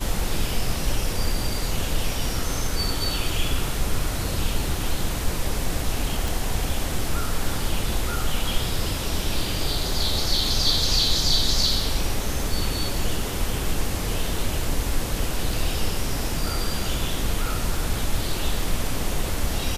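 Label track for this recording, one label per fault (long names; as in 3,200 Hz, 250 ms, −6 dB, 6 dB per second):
6.280000	6.280000	click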